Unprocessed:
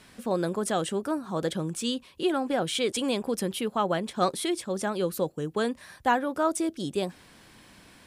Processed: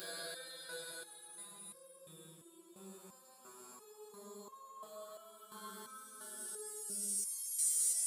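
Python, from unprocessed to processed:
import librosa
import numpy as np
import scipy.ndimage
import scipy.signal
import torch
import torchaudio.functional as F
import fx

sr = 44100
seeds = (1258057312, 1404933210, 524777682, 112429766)

y = fx.paulstretch(x, sr, seeds[0], factor=34.0, window_s=0.1, from_s=0.44)
y = scipy.signal.lfilter([1.0, -0.97], [1.0], y)
y = fx.resonator_held(y, sr, hz=2.9, low_hz=97.0, high_hz=540.0)
y = F.gain(torch.from_numpy(y), 9.5).numpy()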